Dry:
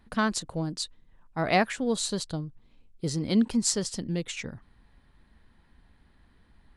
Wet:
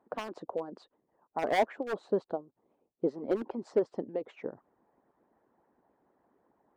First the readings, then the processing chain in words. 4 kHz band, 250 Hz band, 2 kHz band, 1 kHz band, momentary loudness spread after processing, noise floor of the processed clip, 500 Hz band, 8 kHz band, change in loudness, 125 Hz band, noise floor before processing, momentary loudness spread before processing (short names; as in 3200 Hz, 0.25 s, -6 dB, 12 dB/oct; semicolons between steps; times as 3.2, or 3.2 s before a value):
-16.0 dB, -10.0 dB, -9.0 dB, -3.5 dB, 12 LU, -80 dBFS, +1.0 dB, under -25 dB, -5.5 dB, -17.5 dB, -62 dBFS, 12 LU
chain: Butterworth band-pass 530 Hz, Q 0.88; hard clip -25 dBFS, distortion -10 dB; harmonic-percussive split harmonic -17 dB; gain +7.5 dB